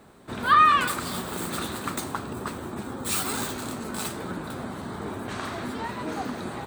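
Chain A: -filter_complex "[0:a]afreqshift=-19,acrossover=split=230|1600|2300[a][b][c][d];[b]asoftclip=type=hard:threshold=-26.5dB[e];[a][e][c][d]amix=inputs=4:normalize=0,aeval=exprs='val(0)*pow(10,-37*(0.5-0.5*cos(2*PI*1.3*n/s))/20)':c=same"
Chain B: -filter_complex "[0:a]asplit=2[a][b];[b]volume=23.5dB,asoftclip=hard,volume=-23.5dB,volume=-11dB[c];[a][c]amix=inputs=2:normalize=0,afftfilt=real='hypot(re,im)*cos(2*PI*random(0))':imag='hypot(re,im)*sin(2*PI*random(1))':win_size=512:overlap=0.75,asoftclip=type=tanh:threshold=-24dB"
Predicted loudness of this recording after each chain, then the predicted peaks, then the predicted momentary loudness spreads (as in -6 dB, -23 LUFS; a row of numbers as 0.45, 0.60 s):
-34.5, -34.5 LUFS; -16.5, -24.0 dBFS; 22, 11 LU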